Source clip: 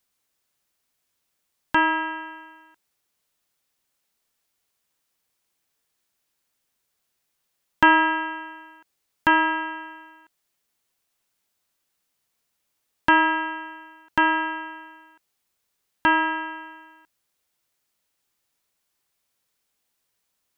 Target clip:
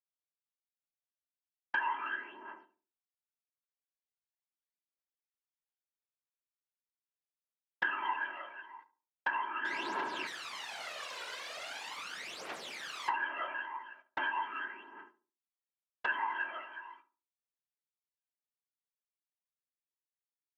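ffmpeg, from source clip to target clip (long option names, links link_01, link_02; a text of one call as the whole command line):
ffmpeg -i in.wav -filter_complex "[0:a]asettb=1/sr,asplit=3[link_01][link_02][link_03];[link_01]atrim=end=9.654[link_04];[link_02]atrim=start=9.65:end=13.1,asetpts=PTS-STARTPTS,afade=type=in:duration=0.004:curve=qsin,afade=type=out:start_time=3.446:duration=0.004:curve=qsin,aeval=exprs='val(0)+0.5*0.106*sgn(val(0))':channel_layout=same[link_05];[link_03]atrim=start=13.096[link_06];[link_04][link_05]acrossfade=duration=0.004:curve1=hsin:curve2=qsin[link_07];[link_07][link_06]acrossfade=duration=0.004:curve1=qsin:curve2=hsin,dynaudnorm=framelen=220:gausssize=21:maxgain=7dB,aphaser=in_gain=1:out_gain=1:delay=2.1:decay=0.75:speed=0.4:type=triangular,acompressor=threshold=-21dB:ratio=6,flanger=delay=5.1:depth=1.2:regen=-82:speed=0.12:shape=sinusoidal,afftfilt=real='hypot(re,im)*cos(2*PI*random(0))':imag='hypot(re,im)*sin(2*PI*random(1))':win_size=512:overlap=0.75,highpass=450,lowpass=3100,agate=range=-24dB:threshold=-56dB:ratio=16:detection=peak,asplit=2[link_08][link_09];[link_09]adelay=71,lowpass=frequency=970:poles=1,volume=-12.5dB,asplit=2[link_10][link_11];[link_11]adelay=71,lowpass=frequency=970:poles=1,volume=0.37,asplit=2[link_12][link_13];[link_13]adelay=71,lowpass=frequency=970:poles=1,volume=0.37,asplit=2[link_14][link_15];[link_15]adelay=71,lowpass=frequency=970:poles=1,volume=0.37[link_16];[link_08][link_10][link_12][link_14][link_16]amix=inputs=5:normalize=0" out.wav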